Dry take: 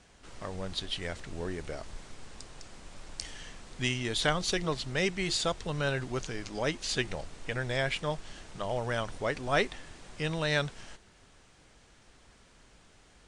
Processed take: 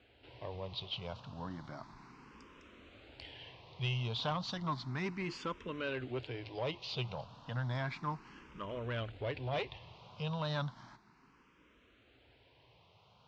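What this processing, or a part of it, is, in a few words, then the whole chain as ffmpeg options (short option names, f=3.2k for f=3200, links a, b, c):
barber-pole phaser into a guitar amplifier: -filter_complex "[0:a]asplit=3[a][b][c];[a]afade=t=out:st=8.45:d=0.02[d];[b]asubboost=boost=2:cutoff=160,afade=t=in:st=8.45:d=0.02,afade=t=out:st=9.87:d=0.02[e];[c]afade=t=in:st=9.87:d=0.02[f];[d][e][f]amix=inputs=3:normalize=0,asplit=2[g][h];[h]afreqshift=0.33[i];[g][i]amix=inputs=2:normalize=1,asoftclip=type=tanh:threshold=-28.5dB,highpass=78,equalizer=f=120:t=q:w=4:g=7,equalizer=f=270:t=q:w=4:g=3,equalizer=f=1k:t=q:w=4:g=8,equalizer=f=1.8k:t=q:w=4:g=-5,equalizer=f=2.7k:t=q:w=4:g=3,lowpass=f=4.3k:w=0.5412,lowpass=f=4.3k:w=1.3066,volume=-2.5dB"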